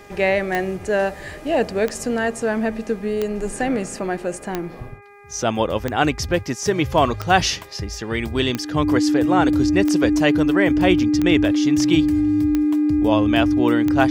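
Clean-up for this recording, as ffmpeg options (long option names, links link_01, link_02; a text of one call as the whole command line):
ffmpeg -i in.wav -af "adeclick=threshold=4,bandreject=frequency=406:width_type=h:width=4,bandreject=frequency=812:width_type=h:width=4,bandreject=frequency=1218:width_type=h:width=4,bandreject=frequency=1624:width_type=h:width=4,bandreject=frequency=2030:width_type=h:width=4,bandreject=frequency=2436:width_type=h:width=4,bandreject=frequency=300:width=30" out.wav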